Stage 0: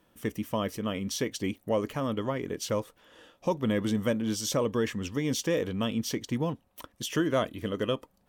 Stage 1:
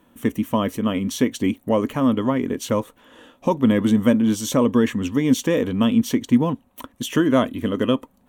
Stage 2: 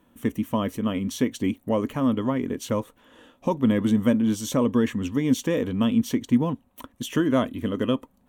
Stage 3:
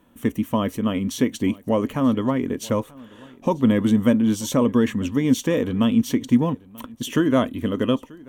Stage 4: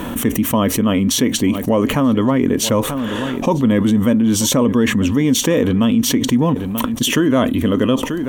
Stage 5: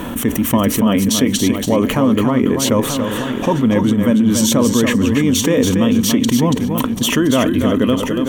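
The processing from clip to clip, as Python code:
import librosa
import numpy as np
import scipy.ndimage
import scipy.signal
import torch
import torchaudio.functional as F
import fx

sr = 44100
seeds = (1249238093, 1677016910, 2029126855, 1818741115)

y1 = fx.graphic_eq_31(x, sr, hz=(250, 1000, 5000), db=(12, 4, -11))
y1 = y1 * librosa.db_to_amplitude(6.5)
y2 = fx.low_shelf(y1, sr, hz=160.0, db=4.0)
y2 = y2 * librosa.db_to_amplitude(-5.0)
y3 = y2 + 10.0 ** (-23.5 / 20.0) * np.pad(y2, (int(937 * sr / 1000.0), 0))[:len(y2)]
y3 = y3 * librosa.db_to_amplitude(3.0)
y4 = fx.env_flatten(y3, sr, amount_pct=70)
y5 = fx.echo_feedback(y4, sr, ms=283, feedback_pct=17, wet_db=-6.0)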